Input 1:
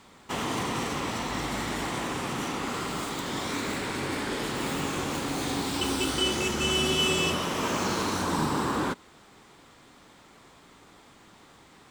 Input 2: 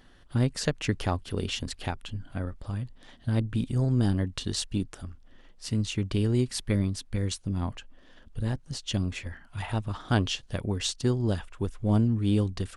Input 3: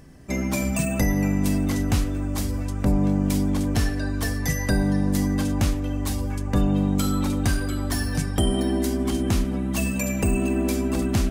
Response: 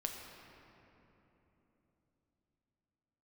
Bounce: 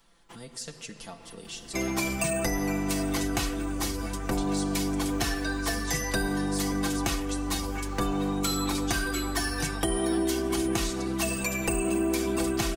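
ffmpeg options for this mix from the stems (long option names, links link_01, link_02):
-filter_complex "[0:a]volume=-15.5dB[link_01];[1:a]bass=frequency=250:gain=-4,treble=frequency=4000:gain=14,aecho=1:1:4.4:0.67,volume=-17dB,asplit=3[link_02][link_03][link_04];[link_03]volume=-3dB[link_05];[2:a]lowshelf=frequency=360:gain=-9,aecho=1:1:2.7:0.47,adelay=1450,volume=1.5dB[link_06];[link_04]apad=whole_len=524853[link_07];[link_01][link_07]sidechaincompress=threshold=-58dB:ratio=5:attack=16:release=145[link_08];[link_08][link_02]amix=inputs=2:normalize=0,aeval=exprs='0.0398*(abs(mod(val(0)/0.0398+3,4)-2)-1)':channel_layout=same,acompressor=threshold=-45dB:ratio=6,volume=0dB[link_09];[3:a]atrim=start_sample=2205[link_10];[link_05][link_10]afir=irnorm=-1:irlink=0[link_11];[link_06][link_09][link_11]amix=inputs=3:normalize=0,aecho=1:1:5.9:0.62,acrossover=split=260|7200[link_12][link_13][link_14];[link_12]acompressor=threshold=-30dB:ratio=4[link_15];[link_13]acompressor=threshold=-26dB:ratio=4[link_16];[link_14]acompressor=threshold=-38dB:ratio=4[link_17];[link_15][link_16][link_17]amix=inputs=3:normalize=0"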